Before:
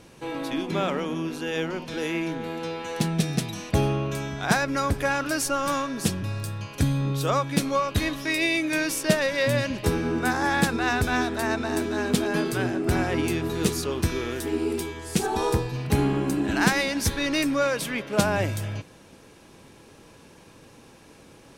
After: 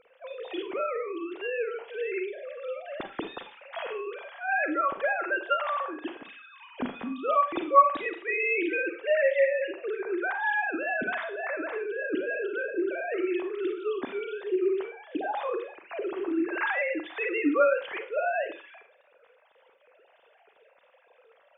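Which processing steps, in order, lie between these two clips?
sine-wave speech; Schroeder reverb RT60 0.33 s, combs from 33 ms, DRR 7 dB; gain -4.5 dB

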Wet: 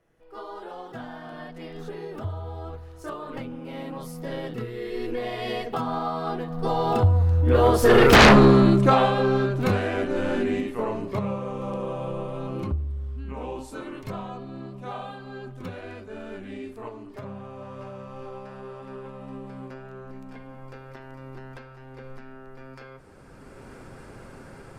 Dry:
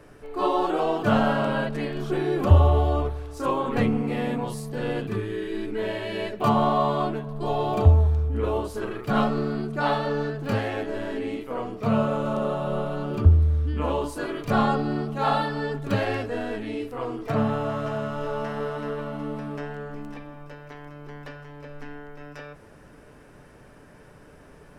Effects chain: recorder AGC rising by 14 dB/s; Doppler pass-by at 8.23, 36 m/s, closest 4.7 m; sine folder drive 13 dB, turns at -8 dBFS

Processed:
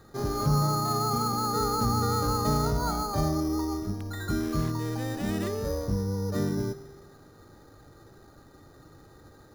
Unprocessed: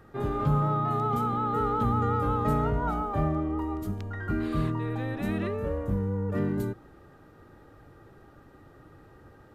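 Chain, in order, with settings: spring tank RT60 1.7 s, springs 48 ms, chirp 50 ms, DRR 14.5 dB; careless resampling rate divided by 8×, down filtered, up hold

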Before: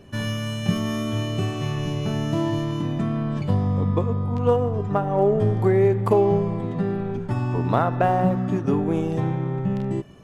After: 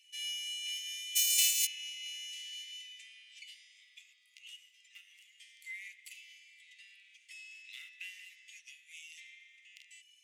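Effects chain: 1.15–1.65 spectral whitening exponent 0.1; rippled Chebyshev high-pass 2000 Hz, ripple 6 dB

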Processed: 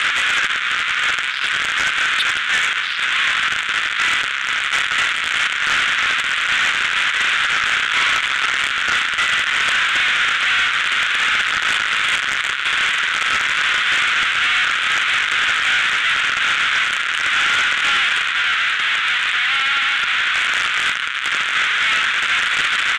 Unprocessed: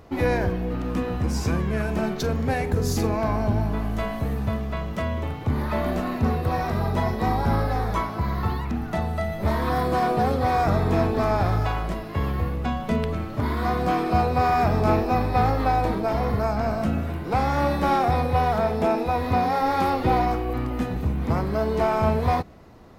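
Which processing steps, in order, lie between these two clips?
infinite clipping; elliptic band-pass 1400–3500 Hz, stop band 60 dB; 18.18–20.35 compressor, threshold -30 dBFS, peak gain reduction 3 dB; sine folder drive 7 dB, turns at -18 dBFS; echo 1.043 s -16.5 dB; gain +6.5 dB

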